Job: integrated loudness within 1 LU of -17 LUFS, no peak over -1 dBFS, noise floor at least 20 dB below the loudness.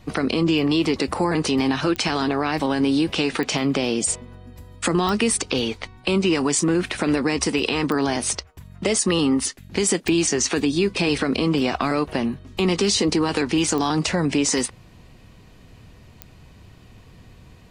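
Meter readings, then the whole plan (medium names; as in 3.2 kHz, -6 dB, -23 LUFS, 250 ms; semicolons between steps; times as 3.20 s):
clicks found 7; loudness -21.5 LUFS; peak level -6.5 dBFS; loudness target -17.0 LUFS
-> de-click; trim +4.5 dB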